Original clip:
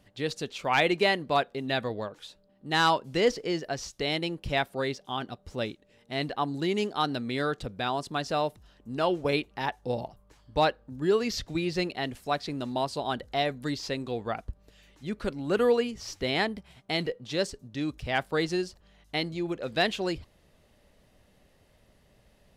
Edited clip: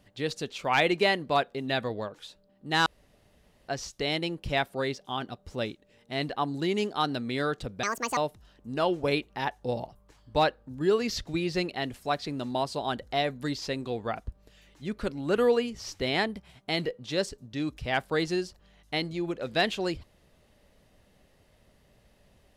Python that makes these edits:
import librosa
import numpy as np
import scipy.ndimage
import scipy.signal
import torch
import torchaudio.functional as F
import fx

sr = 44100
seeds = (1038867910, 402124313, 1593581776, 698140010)

y = fx.edit(x, sr, fx.room_tone_fill(start_s=2.86, length_s=0.82),
    fx.speed_span(start_s=7.83, length_s=0.55, speed=1.62), tone=tone)